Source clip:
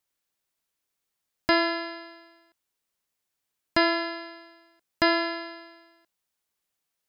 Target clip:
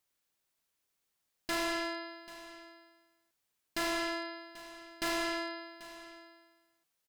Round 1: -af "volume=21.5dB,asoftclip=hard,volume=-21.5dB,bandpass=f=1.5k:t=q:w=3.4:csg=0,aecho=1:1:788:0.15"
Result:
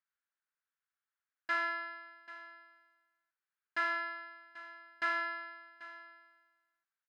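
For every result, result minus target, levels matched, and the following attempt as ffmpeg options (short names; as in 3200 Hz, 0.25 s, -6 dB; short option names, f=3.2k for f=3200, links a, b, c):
overloaded stage: distortion -7 dB; 2000 Hz band +3.0 dB
-af "volume=32dB,asoftclip=hard,volume=-32dB,bandpass=f=1.5k:t=q:w=3.4:csg=0,aecho=1:1:788:0.15"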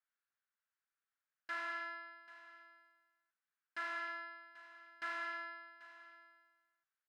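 2000 Hz band +3.5 dB
-af "volume=32dB,asoftclip=hard,volume=-32dB,aecho=1:1:788:0.15"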